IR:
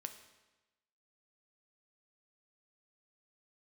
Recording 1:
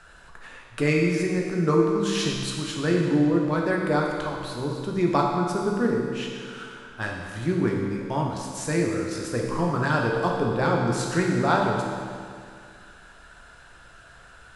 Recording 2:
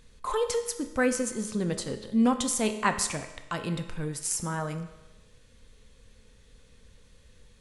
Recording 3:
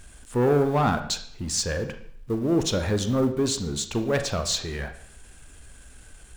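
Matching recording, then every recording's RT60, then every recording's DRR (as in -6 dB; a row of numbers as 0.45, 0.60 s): 2; 2.2, 1.1, 0.60 s; -1.0, 6.5, 7.5 dB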